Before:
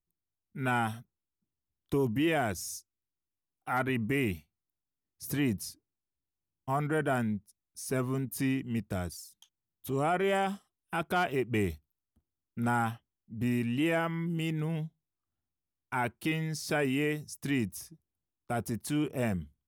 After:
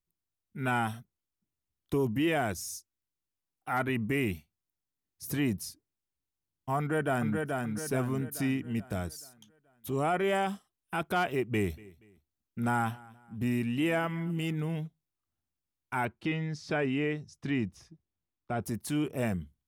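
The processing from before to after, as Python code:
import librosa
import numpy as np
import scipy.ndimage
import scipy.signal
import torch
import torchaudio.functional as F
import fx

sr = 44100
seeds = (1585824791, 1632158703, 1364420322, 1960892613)

y = fx.echo_throw(x, sr, start_s=6.78, length_s=0.57, ms=430, feedback_pct=45, wet_db=-3.5)
y = fx.echo_feedback(y, sr, ms=238, feedback_pct=36, wet_db=-22.5, at=(11.72, 14.86), fade=0.02)
y = fx.air_absorb(y, sr, metres=140.0, at=(16.05, 18.62))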